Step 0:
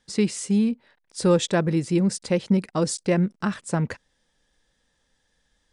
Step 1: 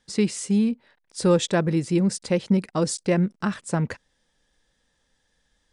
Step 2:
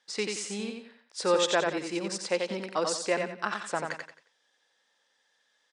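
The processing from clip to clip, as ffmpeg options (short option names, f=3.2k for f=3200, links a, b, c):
-af anull
-af "highpass=590,lowpass=6.4k,aecho=1:1:89|178|267|356:0.596|0.197|0.0649|0.0214"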